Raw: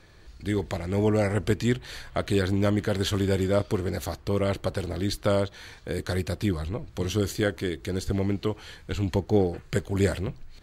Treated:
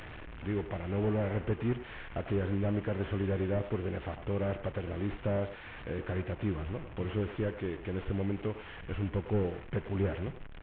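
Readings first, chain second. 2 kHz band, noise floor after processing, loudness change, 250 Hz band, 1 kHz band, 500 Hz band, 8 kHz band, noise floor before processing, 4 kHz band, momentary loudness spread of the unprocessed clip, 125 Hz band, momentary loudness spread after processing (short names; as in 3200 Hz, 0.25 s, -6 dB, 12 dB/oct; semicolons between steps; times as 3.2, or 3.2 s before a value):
-8.0 dB, -46 dBFS, -7.0 dB, -7.0 dB, -7.0 dB, -7.5 dB, under -40 dB, -50 dBFS, -15.5 dB, 9 LU, -6.0 dB, 8 LU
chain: delta modulation 16 kbps, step -36 dBFS; in parallel at -2 dB: compressor, threshold -37 dBFS, peak gain reduction 18 dB; on the sum: speakerphone echo 0.1 s, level -10 dB; gain -8 dB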